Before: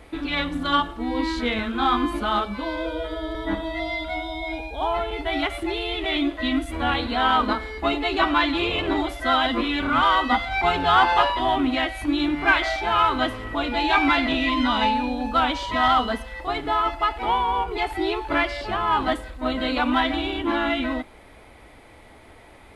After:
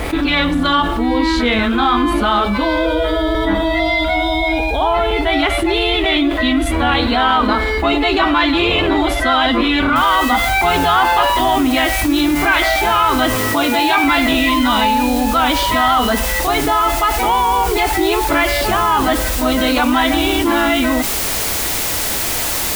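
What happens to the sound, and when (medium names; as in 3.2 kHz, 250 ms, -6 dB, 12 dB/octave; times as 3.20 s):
9.96 s: noise floor step -67 dB -40 dB
13.35–14.04 s: high-pass 91 Hz 24 dB/octave
whole clip: level flattener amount 70%; trim +2.5 dB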